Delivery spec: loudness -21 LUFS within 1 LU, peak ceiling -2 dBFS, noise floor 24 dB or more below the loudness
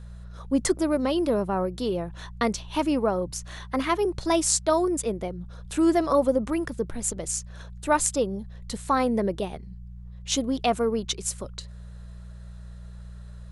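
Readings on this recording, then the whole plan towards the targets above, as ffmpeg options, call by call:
hum 60 Hz; harmonics up to 180 Hz; hum level -39 dBFS; loudness -26.0 LUFS; peak -4.5 dBFS; loudness target -21.0 LUFS
-> -af "bandreject=f=60:t=h:w=4,bandreject=f=120:t=h:w=4,bandreject=f=180:t=h:w=4"
-af "volume=5dB,alimiter=limit=-2dB:level=0:latency=1"

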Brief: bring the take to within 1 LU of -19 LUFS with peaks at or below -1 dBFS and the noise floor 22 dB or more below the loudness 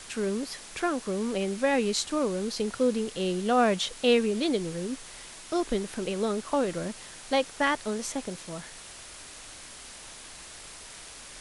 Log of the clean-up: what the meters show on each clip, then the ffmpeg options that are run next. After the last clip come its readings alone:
noise floor -46 dBFS; noise floor target -51 dBFS; loudness -28.5 LUFS; peak -12.0 dBFS; loudness target -19.0 LUFS
-> -af "afftdn=nr=6:nf=-46"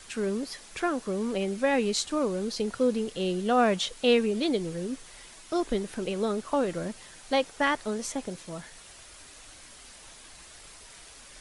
noise floor -50 dBFS; noise floor target -51 dBFS
-> -af "afftdn=nr=6:nf=-50"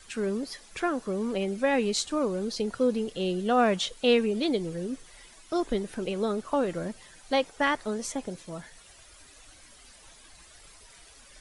noise floor -54 dBFS; loudness -28.5 LUFS; peak -12.0 dBFS; loudness target -19.0 LUFS
-> -af "volume=9.5dB"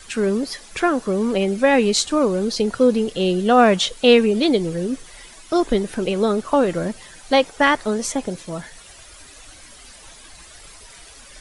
loudness -19.0 LUFS; peak -2.5 dBFS; noise floor -44 dBFS

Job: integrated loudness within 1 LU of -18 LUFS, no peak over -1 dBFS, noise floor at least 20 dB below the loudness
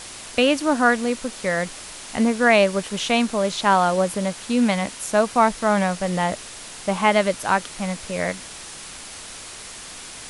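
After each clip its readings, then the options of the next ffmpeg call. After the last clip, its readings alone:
noise floor -38 dBFS; noise floor target -41 dBFS; loudness -21.0 LUFS; peak -4.0 dBFS; loudness target -18.0 LUFS
-> -af "afftdn=nr=6:nf=-38"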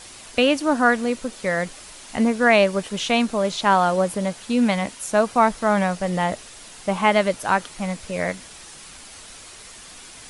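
noise floor -42 dBFS; loudness -21.0 LUFS; peak -4.5 dBFS; loudness target -18.0 LUFS
-> -af "volume=3dB"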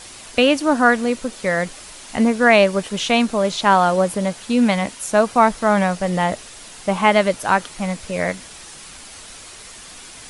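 loudness -18.0 LUFS; peak -1.5 dBFS; noise floor -39 dBFS

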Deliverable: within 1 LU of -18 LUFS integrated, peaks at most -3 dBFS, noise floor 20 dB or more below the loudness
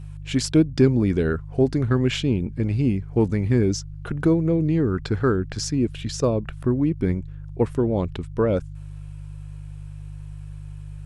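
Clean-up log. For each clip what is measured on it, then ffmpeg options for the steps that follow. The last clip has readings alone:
hum 50 Hz; harmonics up to 150 Hz; hum level -34 dBFS; loudness -22.5 LUFS; peak -5.0 dBFS; loudness target -18.0 LUFS
-> -af "bandreject=f=50:t=h:w=4,bandreject=f=100:t=h:w=4,bandreject=f=150:t=h:w=4"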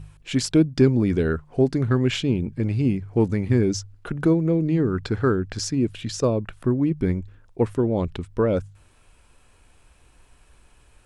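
hum none; loudness -23.0 LUFS; peak -5.5 dBFS; loudness target -18.0 LUFS
-> -af "volume=5dB,alimiter=limit=-3dB:level=0:latency=1"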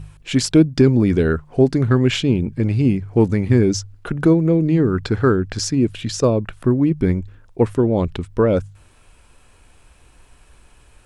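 loudness -18.0 LUFS; peak -3.0 dBFS; noise floor -52 dBFS

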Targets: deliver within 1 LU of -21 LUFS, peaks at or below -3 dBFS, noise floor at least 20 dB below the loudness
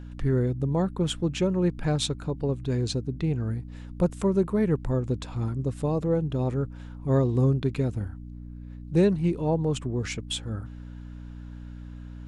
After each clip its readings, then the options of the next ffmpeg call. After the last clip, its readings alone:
hum 60 Hz; harmonics up to 300 Hz; hum level -38 dBFS; loudness -27.0 LUFS; peak -10.5 dBFS; loudness target -21.0 LUFS
-> -af "bandreject=f=60:t=h:w=4,bandreject=f=120:t=h:w=4,bandreject=f=180:t=h:w=4,bandreject=f=240:t=h:w=4,bandreject=f=300:t=h:w=4"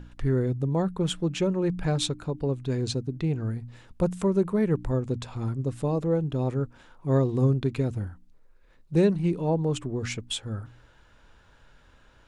hum none; loudness -27.5 LUFS; peak -11.0 dBFS; loudness target -21.0 LUFS
-> -af "volume=6.5dB"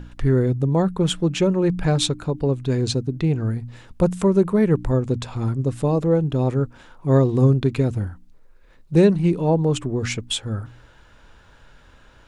loudness -21.0 LUFS; peak -4.5 dBFS; noise floor -51 dBFS

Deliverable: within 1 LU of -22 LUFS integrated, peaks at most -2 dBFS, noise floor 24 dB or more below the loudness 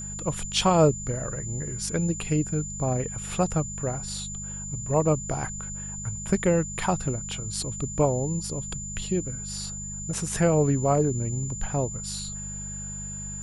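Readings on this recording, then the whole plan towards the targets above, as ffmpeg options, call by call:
hum 50 Hz; harmonics up to 200 Hz; hum level -37 dBFS; steady tone 7100 Hz; tone level -35 dBFS; loudness -27.5 LUFS; peak -8.0 dBFS; loudness target -22.0 LUFS
-> -af "bandreject=f=50:t=h:w=4,bandreject=f=100:t=h:w=4,bandreject=f=150:t=h:w=4,bandreject=f=200:t=h:w=4"
-af "bandreject=f=7.1k:w=30"
-af "volume=5.5dB"

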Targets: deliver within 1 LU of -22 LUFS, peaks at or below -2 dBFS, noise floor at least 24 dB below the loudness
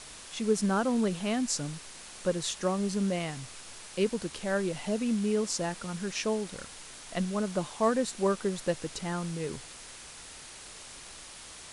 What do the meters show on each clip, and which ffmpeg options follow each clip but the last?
noise floor -47 dBFS; noise floor target -55 dBFS; loudness -31.0 LUFS; peak -15.0 dBFS; loudness target -22.0 LUFS
-> -af "afftdn=nr=8:nf=-47"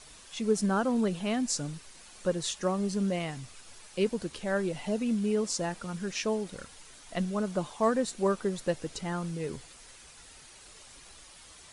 noise floor -53 dBFS; noise floor target -55 dBFS
-> -af "afftdn=nr=6:nf=-53"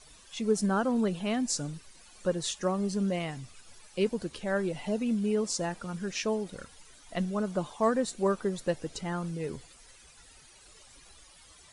noise floor -56 dBFS; loudness -31.0 LUFS; peak -15.0 dBFS; loudness target -22.0 LUFS
-> -af "volume=9dB"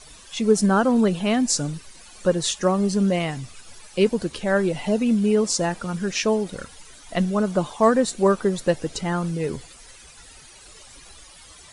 loudness -22.0 LUFS; peak -6.0 dBFS; noise floor -47 dBFS

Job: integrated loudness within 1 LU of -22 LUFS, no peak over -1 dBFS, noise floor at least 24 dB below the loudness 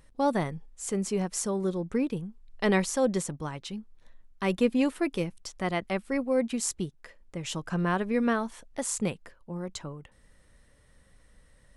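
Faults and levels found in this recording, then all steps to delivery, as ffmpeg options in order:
loudness -30.0 LUFS; peak -12.5 dBFS; loudness target -22.0 LUFS
-> -af "volume=8dB"

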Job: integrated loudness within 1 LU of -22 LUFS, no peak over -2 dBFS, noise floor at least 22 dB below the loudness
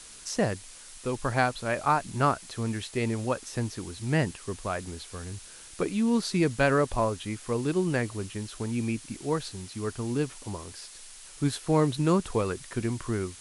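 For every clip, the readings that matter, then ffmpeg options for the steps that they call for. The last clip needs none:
noise floor -48 dBFS; noise floor target -52 dBFS; loudness -29.5 LUFS; peak -10.0 dBFS; loudness target -22.0 LUFS
-> -af "afftdn=nr=6:nf=-48"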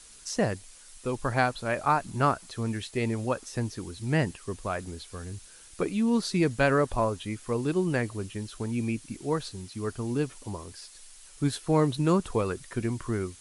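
noise floor -51 dBFS; loudness -29.0 LUFS; peak -10.0 dBFS; loudness target -22.0 LUFS
-> -af "volume=7dB"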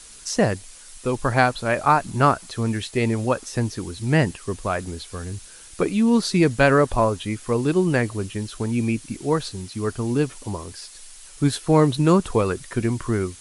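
loudness -22.0 LUFS; peak -3.0 dBFS; noise floor -44 dBFS

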